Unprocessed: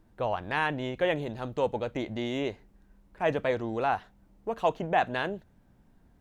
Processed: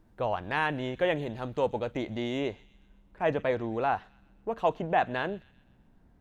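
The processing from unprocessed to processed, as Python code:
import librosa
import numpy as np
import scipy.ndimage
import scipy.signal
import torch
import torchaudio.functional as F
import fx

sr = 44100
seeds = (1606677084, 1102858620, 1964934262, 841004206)

y = fx.high_shelf(x, sr, hz=4500.0, db=fx.steps((0.0, -2.5), (2.46, -9.0)))
y = fx.echo_wet_highpass(y, sr, ms=128, feedback_pct=49, hz=2400.0, wet_db=-18.0)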